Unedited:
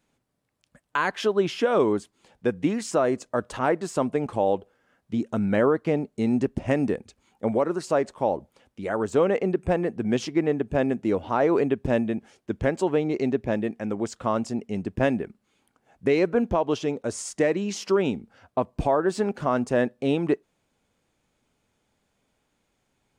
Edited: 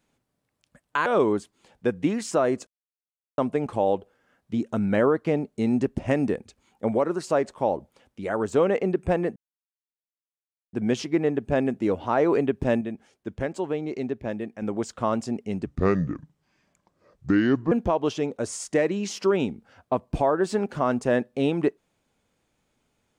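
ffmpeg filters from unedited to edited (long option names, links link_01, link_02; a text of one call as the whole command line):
ffmpeg -i in.wav -filter_complex "[0:a]asplit=9[link_01][link_02][link_03][link_04][link_05][link_06][link_07][link_08][link_09];[link_01]atrim=end=1.062[link_10];[link_02]atrim=start=1.658:end=3.27,asetpts=PTS-STARTPTS,afade=type=out:start_time=1.608:duration=0.004:curve=hsin[link_11];[link_03]atrim=start=3.27:end=3.98,asetpts=PTS-STARTPTS,volume=0[link_12];[link_04]atrim=start=3.98:end=9.96,asetpts=PTS-STARTPTS,afade=type=in:duration=0.004:curve=hsin,afade=type=out:start_time=5.976:duration=0.004:curve=hsin,apad=pad_dur=1.37[link_13];[link_05]atrim=start=9.96:end=12.042,asetpts=PTS-STARTPTS,afade=type=in:duration=0.004:curve=hsin[link_14];[link_06]atrim=start=12.038:end=13.852,asetpts=PTS-STARTPTS,volume=-5dB[link_15];[link_07]atrim=start=13.848:end=14.894[link_16];[link_08]atrim=start=14.89:end=16.37,asetpts=PTS-STARTPTS,asetrate=31752,aresample=44100[link_17];[link_09]atrim=start=16.366[link_18];[link_11][link_12][link_13][link_14]concat=n=4:v=0:a=1[link_19];[link_10][link_19]acrossfade=duration=0.004:curve1=hsin:curve2=hsin[link_20];[link_20][link_15]acrossfade=duration=0.004:curve1=hsin:curve2=hsin[link_21];[link_21][link_16]acrossfade=duration=0.004:curve1=hsin:curve2=hsin[link_22];[link_22][link_17]acrossfade=duration=0.004:curve1=hsin:curve2=hsin[link_23];[link_23][link_18]acrossfade=duration=0.004:curve1=hsin:curve2=hsin" out.wav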